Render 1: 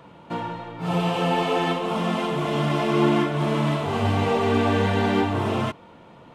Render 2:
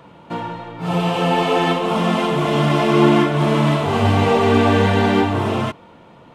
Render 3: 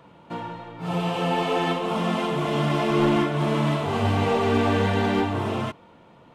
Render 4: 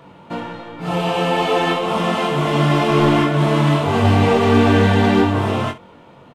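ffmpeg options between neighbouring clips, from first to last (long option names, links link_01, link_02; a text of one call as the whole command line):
ffmpeg -i in.wav -af "dynaudnorm=framelen=210:gausssize=13:maxgain=4dB,volume=3dB" out.wav
ffmpeg -i in.wav -af "aeval=exprs='clip(val(0),-1,0.335)':channel_layout=same,volume=-6.5dB" out.wav
ffmpeg -i in.wav -af "aecho=1:1:21|65:0.531|0.168,volume=6dB" out.wav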